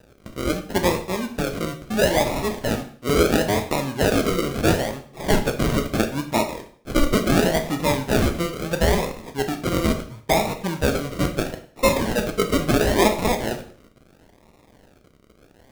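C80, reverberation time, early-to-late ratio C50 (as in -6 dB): 14.5 dB, 0.50 s, 11.0 dB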